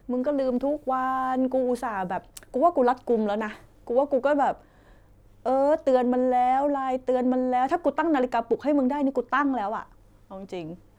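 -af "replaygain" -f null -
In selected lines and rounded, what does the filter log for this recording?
track_gain = +5.6 dB
track_peak = 0.215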